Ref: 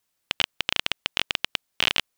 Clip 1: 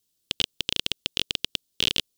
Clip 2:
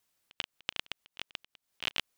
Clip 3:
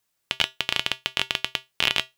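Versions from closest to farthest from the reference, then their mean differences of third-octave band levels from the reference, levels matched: 3, 1, 2; 1.5 dB, 5.0 dB, 8.5 dB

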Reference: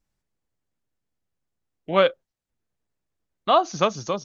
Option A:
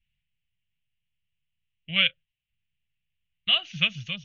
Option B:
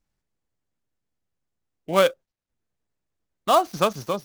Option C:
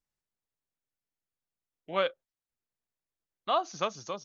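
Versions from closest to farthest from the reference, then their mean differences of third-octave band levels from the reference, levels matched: C, B, A; 1.5 dB, 5.0 dB, 8.5 dB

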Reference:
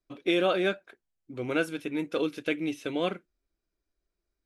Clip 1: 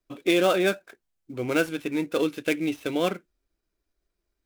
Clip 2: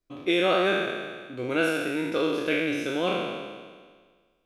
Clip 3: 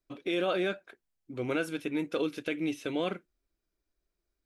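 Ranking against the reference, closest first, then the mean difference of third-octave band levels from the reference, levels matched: 3, 1, 2; 2.0 dB, 3.0 dB, 7.0 dB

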